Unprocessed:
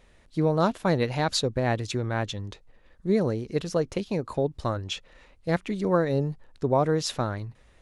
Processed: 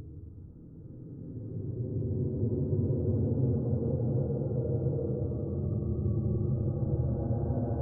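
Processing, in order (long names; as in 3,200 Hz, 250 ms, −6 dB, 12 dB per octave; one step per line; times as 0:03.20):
random phases in long frames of 50 ms
Gaussian smoothing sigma 12 samples
extreme stretch with random phases 34×, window 0.10 s, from 0:01.88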